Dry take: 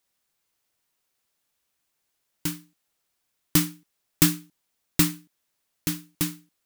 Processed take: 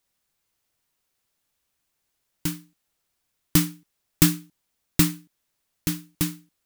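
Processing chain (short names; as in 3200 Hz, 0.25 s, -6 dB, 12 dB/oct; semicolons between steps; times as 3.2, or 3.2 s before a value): low shelf 140 Hz +7.5 dB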